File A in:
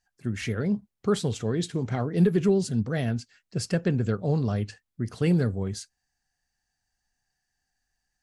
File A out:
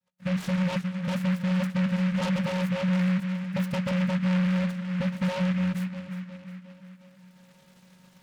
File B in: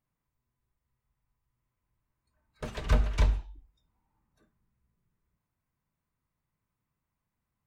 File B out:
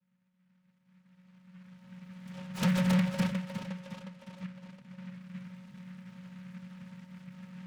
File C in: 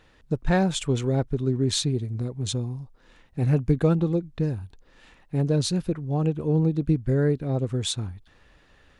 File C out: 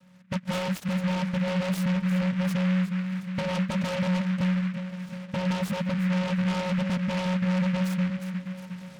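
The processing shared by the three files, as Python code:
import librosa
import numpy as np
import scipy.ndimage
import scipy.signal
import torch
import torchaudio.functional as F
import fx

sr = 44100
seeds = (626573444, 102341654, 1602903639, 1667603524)

p1 = fx.recorder_agc(x, sr, target_db=-16.0, rise_db_per_s=14.0, max_gain_db=30)
p2 = fx.vocoder(p1, sr, bands=8, carrier='square', carrier_hz=183.0)
p3 = np.clip(10.0 ** (18.5 / 20.0) * p2, -1.0, 1.0) / 10.0 ** (18.5 / 20.0)
p4 = p3 + fx.echo_tape(p3, sr, ms=359, feedback_pct=62, wet_db=-9.0, lp_hz=3400.0, drive_db=15.0, wow_cents=11, dry=0)
p5 = fx.fold_sine(p4, sr, drive_db=9, ceiling_db=-17.0)
p6 = fx.bass_treble(p5, sr, bass_db=6, treble_db=0)
p7 = fx.noise_mod_delay(p6, sr, seeds[0], noise_hz=1700.0, depth_ms=0.13)
y = p7 * 10.0 ** (-9.0 / 20.0)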